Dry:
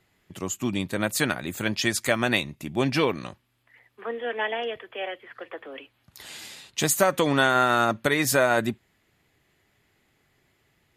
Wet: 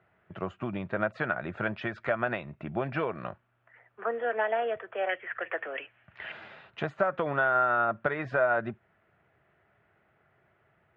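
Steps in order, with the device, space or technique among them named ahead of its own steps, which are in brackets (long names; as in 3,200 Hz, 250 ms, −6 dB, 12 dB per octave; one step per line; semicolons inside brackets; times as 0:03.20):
bass amplifier (downward compressor 5 to 1, threshold −27 dBFS, peak gain reduction 11 dB; loudspeaker in its box 76–2,300 Hz, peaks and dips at 270 Hz −9 dB, 650 Hz +8 dB, 1,400 Hz +8 dB, 2,100 Hz −4 dB)
0:05.09–0:06.32: flat-topped bell 2,300 Hz +11 dB 1.1 octaves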